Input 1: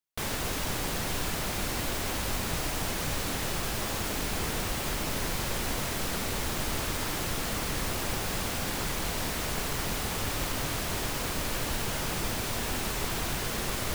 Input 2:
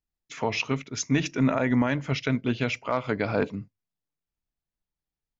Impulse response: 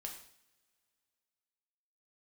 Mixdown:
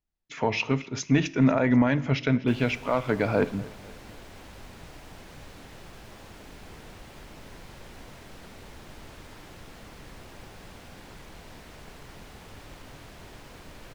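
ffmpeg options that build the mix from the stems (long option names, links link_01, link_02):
-filter_complex "[0:a]adelay=2300,volume=-13dB[link_01];[1:a]acontrast=77,volume=-6dB,asplit=3[link_02][link_03][link_04];[link_03]volume=-8dB[link_05];[link_04]volume=-19.5dB[link_06];[2:a]atrim=start_sample=2205[link_07];[link_05][link_07]afir=irnorm=-1:irlink=0[link_08];[link_06]aecho=0:1:246|492|738|984|1230|1476|1722:1|0.51|0.26|0.133|0.0677|0.0345|0.0176[link_09];[link_01][link_02][link_08][link_09]amix=inputs=4:normalize=0,lowpass=frequency=3100:poles=1,equalizer=frequency=1200:width=4.2:gain=-2.5"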